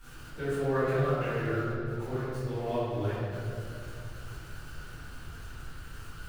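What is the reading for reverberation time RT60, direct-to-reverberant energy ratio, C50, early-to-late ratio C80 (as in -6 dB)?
2.5 s, -16.5 dB, -3.5 dB, -1.0 dB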